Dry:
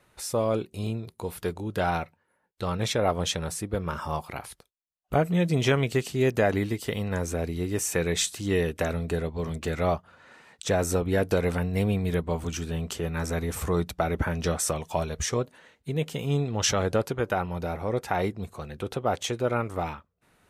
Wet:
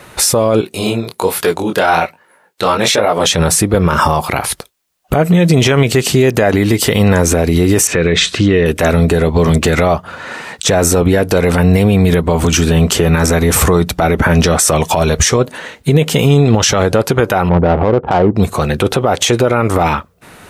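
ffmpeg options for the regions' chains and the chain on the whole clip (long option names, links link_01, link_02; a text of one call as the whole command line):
ffmpeg -i in.wav -filter_complex "[0:a]asettb=1/sr,asplit=3[link_01][link_02][link_03];[link_01]atrim=end=0.614[link_04];[link_02]atrim=start=0.61:end=3.27,asetpts=PTS-STARTPTS,afade=type=in:duration=0.004:curve=qsin,afade=type=out:start_time=2.656:duration=0.004:curve=qsin,flanger=delay=18:depth=7.9:speed=1.2,highpass=frequency=450:poles=1[link_05];[link_03]atrim=start=3.266[link_06];[link_04][link_05]acrossfade=duration=0.004:curve1=hsin:curve2=qsin[link_07];[link_07][link_06]acrossfade=duration=0.004:curve1=qsin:curve2=hsin,asettb=1/sr,asplit=3[link_08][link_09][link_10];[link_08]atrim=end=7.874[link_11];[link_09]atrim=start=7.87:end=8.66,asetpts=PTS-STARTPTS,afade=type=in:duration=0.004:curve=qsin,afade=type=out:start_time=0.786:duration=0.004:curve=qsin,lowpass=3100,equalizer=frequency=840:width=3.7:gain=-10.5[link_12];[link_10]atrim=start=8.656[link_13];[link_11][link_12]acrossfade=duration=0.004:curve1=hsin:curve2=qsin[link_14];[link_14][link_13]acrossfade=duration=0.004:curve1=qsin:curve2=hsin,asettb=1/sr,asplit=3[link_15][link_16][link_17];[link_15]atrim=end=17.494[link_18];[link_16]atrim=start=17.49:end=18.36,asetpts=PTS-STARTPTS,afade=type=in:duration=0.004:curve=qsin,afade=type=out:start_time=0.866:duration=0.004:curve=qsin,lowpass=frequency=1400:width=0.5412,lowpass=frequency=1400:width=1.3066,adynamicsmooth=sensitivity=2:basefreq=500[link_19];[link_17]atrim=start=18.356[link_20];[link_18][link_19]acrossfade=duration=0.004:curve1=hsin:curve2=qsin[link_21];[link_21][link_20]acrossfade=duration=0.004:curve1=qsin:curve2=hsin,lowshelf=frequency=69:gain=-7,acompressor=threshold=-28dB:ratio=6,alimiter=level_in=27dB:limit=-1dB:release=50:level=0:latency=1,volume=-1dB" out.wav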